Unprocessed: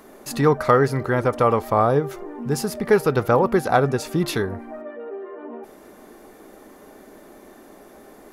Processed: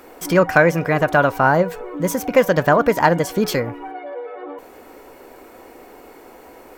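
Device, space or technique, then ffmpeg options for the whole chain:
nightcore: -af "asetrate=54243,aresample=44100,volume=3dB"

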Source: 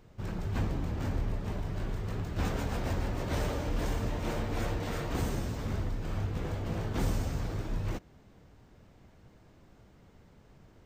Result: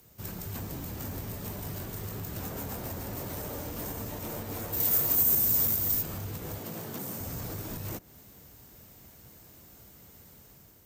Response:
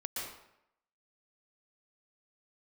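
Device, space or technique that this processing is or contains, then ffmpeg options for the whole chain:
FM broadcast chain: -filter_complex "[0:a]highpass=45,dynaudnorm=f=800:g=3:m=5.5dB,acrossover=split=80|1400|3000[a][b][c][d];[a]acompressor=threshold=-44dB:ratio=4[e];[b]acompressor=threshold=-28dB:ratio=4[f];[c]acompressor=threshold=-53dB:ratio=4[g];[d]acompressor=threshold=-56dB:ratio=4[h];[e][f][g][h]amix=inputs=4:normalize=0,aemphasis=mode=production:type=50fm,alimiter=level_in=1.5dB:limit=-24dB:level=0:latency=1:release=148,volume=-1.5dB,asoftclip=type=hard:threshold=-28.5dB,lowpass=f=15k:w=0.5412,lowpass=f=15k:w=1.3066,aemphasis=mode=production:type=50fm,asplit=3[i][j][k];[i]afade=t=out:st=4.72:d=0.02[l];[j]aemphasis=mode=production:type=75kf,afade=t=in:st=4.72:d=0.02,afade=t=out:st=6.01:d=0.02[m];[k]afade=t=in:st=6.01:d=0.02[n];[l][m][n]amix=inputs=3:normalize=0,asettb=1/sr,asplit=3[o][p][q];[o]atrim=end=6.584[r];[p]atrim=start=6.58:end=7.2,asetpts=PTS-STARTPTS,afade=t=in:d=0.004:c=qsin,afade=t=out:st=0.616:d=0.004:c=qsin,highpass=f=130:w=0.5412,highpass=f=130:w=1.3066[s];[q]atrim=start=7.196[t];[r][s]acrossfade=d=0.004:c1=hsin:c2=qsin[u];[u][t]acrossfade=d=0.004:c1=qsin:c2=hsin,volume=-3dB"

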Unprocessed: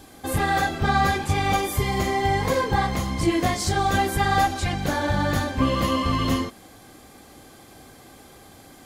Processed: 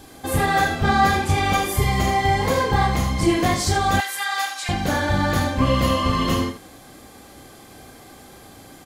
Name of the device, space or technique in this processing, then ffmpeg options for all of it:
slapback doubling: -filter_complex "[0:a]asplit=3[a][b][c];[b]adelay=32,volume=-7.5dB[d];[c]adelay=78,volume=-8dB[e];[a][d][e]amix=inputs=3:normalize=0,asettb=1/sr,asplit=3[f][g][h];[f]atrim=end=4.004[i];[g]atrim=start=4:end=4.69,asetpts=PTS-STARTPTS,afade=t=in:d=0.004:c=qsin,afade=t=out:st=0.686:d=0.004:c=qsin,highpass=1.4k[j];[h]atrim=start=4.686[k];[i][j]acrossfade=d=0.004:c1=hsin:c2=qsin[l];[l][k]acrossfade=d=0.004:c1=qsin:c2=hsin,volume=2dB"

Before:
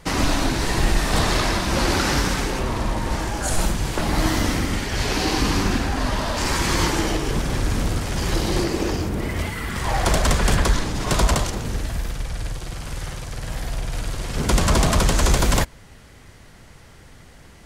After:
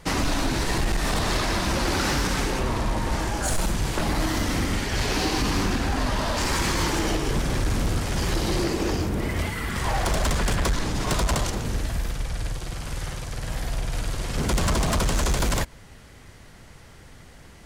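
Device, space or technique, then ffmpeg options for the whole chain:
limiter into clipper: -af "alimiter=limit=-12dB:level=0:latency=1:release=100,asoftclip=type=hard:threshold=-17dB,volume=-1dB"

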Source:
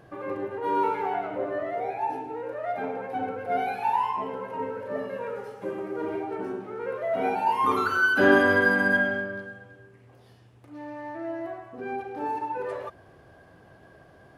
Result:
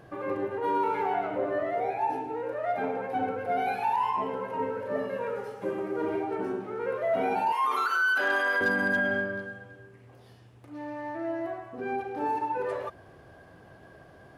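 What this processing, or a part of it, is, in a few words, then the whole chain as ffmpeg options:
clipper into limiter: -filter_complex "[0:a]asettb=1/sr,asplit=3[a][b][c];[a]atrim=end=7.524[d];[b]atrim=start=7.52:end=8.61,asetpts=PTS-STARTPTS,afade=t=in:d=0.004:c=qsin,afade=t=out:st=1.086:d=0.004:c=qsin,highpass=760[e];[c]atrim=start=8.606[f];[d][e]acrossfade=d=0.004:c1=hsin:c2=qsin[g];[g][f]acrossfade=d=0.004:c1=qsin:c2=hsin,asoftclip=type=hard:threshold=-14.5dB,alimiter=limit=-20dB:level=0:latency=1:release=44,volume=1dB"

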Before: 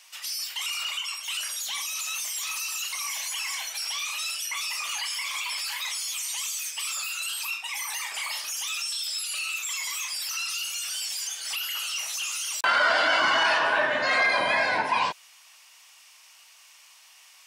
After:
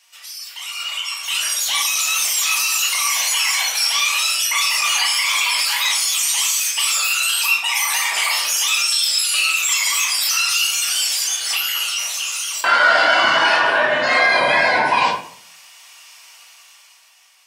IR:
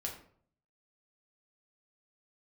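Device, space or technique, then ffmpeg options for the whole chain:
far laptop microphone: -filter_complex "[0:a]asettb=1/sr,asplit=3[a][b][c];[a]atrim=end=3.094[d];[b]atrim=start=3.09:end=4.58,asetpts=PTS-STARTPTS,afade=t=in:d=0.004:c=qsin,afade=t=out:st=1.486:d=0.004:c=qsin,highpass=170[e];[c]atrim=start=4.576[f];[d][e]acrossfade=d=0.004:c1=hsin:c2=qsin[g];[g][f]acrossfade=d=0.004:c1=qsin:c2=hsin[h];[1:a]atrim=start_sample=2205[i];[h][i]afir=irnorm=-1:irlink=0,highpass=f=100:w=0.5412,highpass=f=100:w=1.3066,dynaudnorm=f=220:g=11:m=15dB,volume=-1dB"

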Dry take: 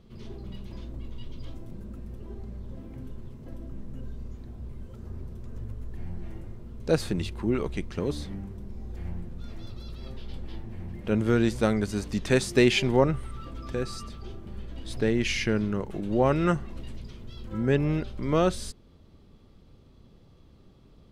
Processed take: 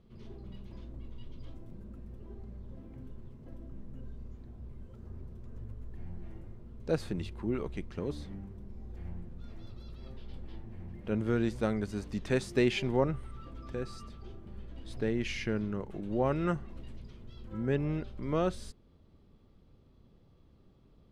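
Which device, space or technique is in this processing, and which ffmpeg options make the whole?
behind a face mask: -af "highshelf=f=3.5k:g=-7,volume=-6.5dB"

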